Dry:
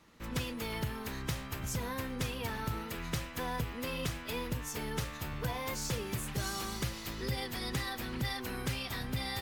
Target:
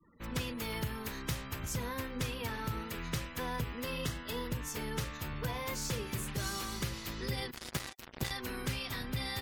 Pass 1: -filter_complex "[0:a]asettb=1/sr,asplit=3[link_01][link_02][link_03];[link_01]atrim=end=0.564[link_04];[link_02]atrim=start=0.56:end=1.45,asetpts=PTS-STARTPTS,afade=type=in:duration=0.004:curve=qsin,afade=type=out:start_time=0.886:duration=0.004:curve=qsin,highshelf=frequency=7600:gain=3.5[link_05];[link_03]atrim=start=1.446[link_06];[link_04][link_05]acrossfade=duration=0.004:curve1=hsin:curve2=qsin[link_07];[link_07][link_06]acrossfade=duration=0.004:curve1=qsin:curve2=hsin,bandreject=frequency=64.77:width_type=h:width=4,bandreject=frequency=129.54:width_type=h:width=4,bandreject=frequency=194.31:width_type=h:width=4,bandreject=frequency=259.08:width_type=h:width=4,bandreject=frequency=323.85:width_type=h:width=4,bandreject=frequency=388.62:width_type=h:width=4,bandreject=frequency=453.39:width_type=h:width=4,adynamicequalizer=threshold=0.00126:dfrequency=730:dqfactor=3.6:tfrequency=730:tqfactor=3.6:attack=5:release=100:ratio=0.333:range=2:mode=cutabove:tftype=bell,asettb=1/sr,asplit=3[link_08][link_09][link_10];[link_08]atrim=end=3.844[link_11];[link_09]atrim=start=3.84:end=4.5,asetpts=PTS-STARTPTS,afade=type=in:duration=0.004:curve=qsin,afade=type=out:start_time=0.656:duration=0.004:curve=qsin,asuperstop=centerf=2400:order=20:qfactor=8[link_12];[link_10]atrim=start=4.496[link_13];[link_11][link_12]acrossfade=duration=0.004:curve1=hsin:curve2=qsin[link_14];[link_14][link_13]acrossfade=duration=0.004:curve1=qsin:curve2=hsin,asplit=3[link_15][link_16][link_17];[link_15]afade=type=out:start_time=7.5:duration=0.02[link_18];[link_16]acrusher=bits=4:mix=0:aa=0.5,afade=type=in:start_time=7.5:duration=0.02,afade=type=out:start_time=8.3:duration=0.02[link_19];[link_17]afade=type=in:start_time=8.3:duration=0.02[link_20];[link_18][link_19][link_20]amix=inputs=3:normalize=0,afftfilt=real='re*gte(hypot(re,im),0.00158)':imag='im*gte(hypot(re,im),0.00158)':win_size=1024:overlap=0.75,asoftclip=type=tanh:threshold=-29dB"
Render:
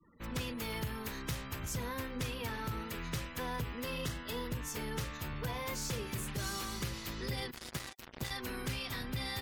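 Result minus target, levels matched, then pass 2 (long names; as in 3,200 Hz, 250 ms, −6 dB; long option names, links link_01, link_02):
soft clipping: distortion +19 dB
-filter_complex "[0:a]asettb=1/sr,asplit=3[link_01][link_02][link_03];[link_01]atrim=end=0.564[link_04];[link_02]atrim=start=0.56:end=1.45,asetpts=PTS-STARTPTS,afade=type=in:duration=0.004:curve=qsin,afade=type=out:start_time=0.886:duration=0.004:curve=qsin,highshelf=frequency=7600:gain=3.5[link_05];[link_03]atrim=start=1.446[link_06];[link_04][link_05]acrossfade=duration=0.004:curve1=hsin:curve2=qsin[link_07];[link_07][link_06]acrossfade=duration=0.004:curve1=qsin:curve2=hsin,bandreject=frequency=64.77:width_type=h:width=4,bandreject=frequency=129.54:width_type=h:width=4,bandreject=frequency=194.31:width_type=h:width=4,bandreject=frequency=259.08:width_type=h:width=4,bandreject=frequency=323.85:width_type=h:width=4,bandreject=frequency=388.62:width_type=h:width=4,bandreject=frequency=453.39:width_type=h:width=4,adynamicequalizer=threshold=0.00126:dfrequency=730:dqfactor=3.6:tfrequency=730:tqfactor=3.6:attack=5:release=100:ratio=0.333:range=2:mode=cutabove:tftype=bell,asettb=1/sr,asplit=3[link_08][link_09][link_10];[link_08]atrim=end=3.844[link_11];[link_09]atrim=start=3.84:end=4.5,asetpts=PTS-STARTPTS,afade=type=in:duration=0.004:curve=qsin,afade=type=out:start_time=0.656:duration=0.004:curve=qsin,asuperstop=centerf=2400:order=20:qfactor=8[link_12];[link_10]atrim=start=4.496[link_13];[link_11][link_12]acrossfade=duration=0.004:curve1=hsin:curve2=qsin[link_14];[link_14][link_13]acrossfade=duration=0.004:curve1=qsin:curve2=hsin,asplit=3[link_15][link_16][link_17];[link_15]afade=type=out:start_time=7.5:duration=0.02[link_18];[link_16]acrusher=bits=4:mix=0:aa=0.5,afade=type=in:start_time=7.5:duration=0.02,afade=type=out:start_time=8.3:duration=0.02[link_19];[link_17]afade=type=in:start_time=8.3:duration=0.02[link_20];[link_18][link_19][link_20]amix=inputs=3:normalize=0,afftfilt=real='re*gte(hypot(re,im),0.00158)':imag='im*gte(hypot(re,im),0.00158)':win_size=1024:overlap=0.75,asoftclip=type=tanh:threshold=-17.5dB"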